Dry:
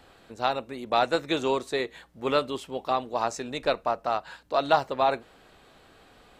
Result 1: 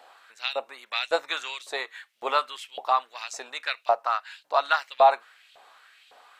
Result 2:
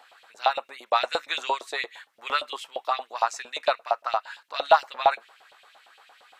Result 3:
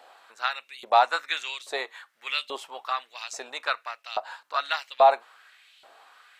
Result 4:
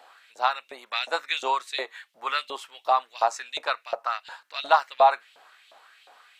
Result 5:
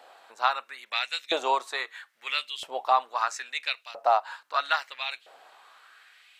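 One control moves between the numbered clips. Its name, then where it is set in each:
LFO high-pass, rate: 1.8, 8.7, 1.2, 2.8, 0.76 Hz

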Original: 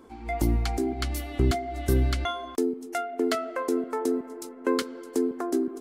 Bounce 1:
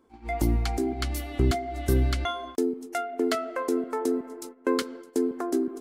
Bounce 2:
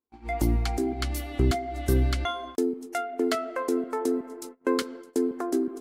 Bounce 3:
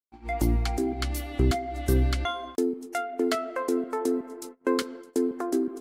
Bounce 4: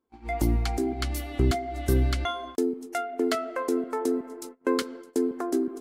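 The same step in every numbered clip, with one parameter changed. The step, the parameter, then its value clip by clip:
gate, range: -12, -41, -60, -29 dB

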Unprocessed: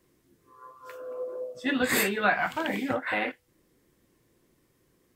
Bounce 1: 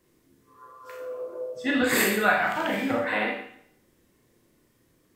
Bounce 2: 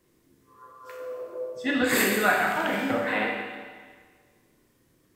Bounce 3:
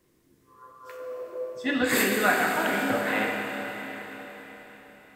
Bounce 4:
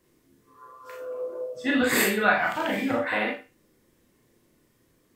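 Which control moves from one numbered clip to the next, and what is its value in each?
Schroeder reverb, RT60: 0.66, 1.6, 4.6, 0.31 s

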